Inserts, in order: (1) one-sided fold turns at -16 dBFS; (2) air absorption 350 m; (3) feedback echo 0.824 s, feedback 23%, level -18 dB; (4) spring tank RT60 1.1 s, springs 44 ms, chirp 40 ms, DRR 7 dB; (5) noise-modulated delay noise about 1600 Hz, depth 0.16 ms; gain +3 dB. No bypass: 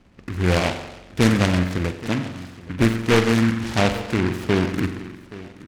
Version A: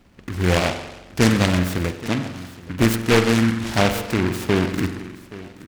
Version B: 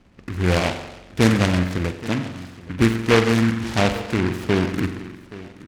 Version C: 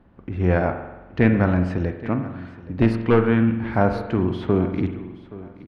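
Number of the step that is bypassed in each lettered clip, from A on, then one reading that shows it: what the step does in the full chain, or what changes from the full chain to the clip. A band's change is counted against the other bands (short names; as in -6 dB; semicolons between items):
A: 2, 8 kHz band +3.0 dB; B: 1, distortion -14 dB; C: 5, 4 kHz band -15.0 dB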